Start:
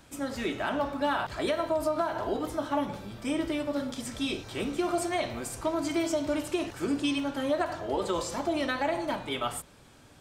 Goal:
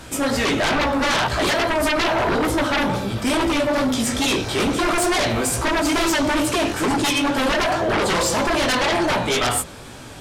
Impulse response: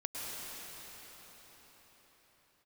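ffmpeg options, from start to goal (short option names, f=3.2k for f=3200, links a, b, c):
-filter_complex "[0:a]bandreject=f=50:t=h:w=6,bandreject=f=100:t=h:w=6,bandreject=f=150:t=h:w=6,bandreject=f=200:t=h:w=6,bandreject=f=250:t=h:w=6,bandreject=f=300:t=h:w=6,flanger=delay=15:depth=5.1:speed=2.3,aeval=exprs='0.126*sin(PI/2*5.62*val(0)/0.126)':c=same[a];[1:a]atrim=start_sample=2205,atrim=end_sample=3087,asetrate=25137,aresample=44100[b];[a][b]afir=irnorm=-1:irlink=0,volume=2.5dB"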